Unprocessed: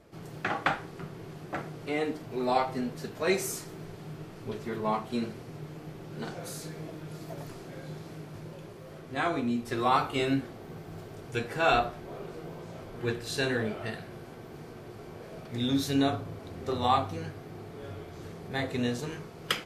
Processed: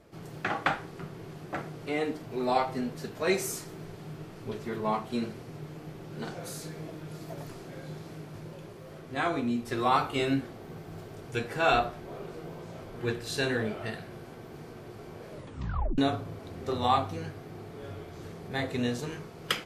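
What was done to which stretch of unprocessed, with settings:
15.31 tape stop 0.67 s

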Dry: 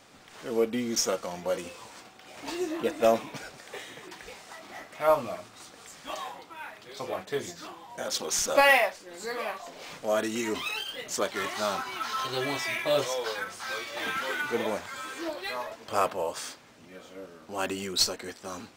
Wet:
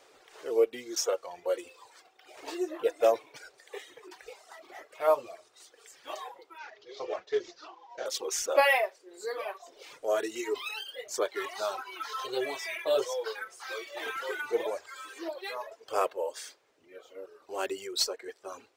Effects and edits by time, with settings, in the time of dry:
6.58–8.06 CVSD 32 kbps
whole clip: reverb removal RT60 1.6 s; resonant low shelf 290 Hz -11 dB, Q 3; gain -4 dB

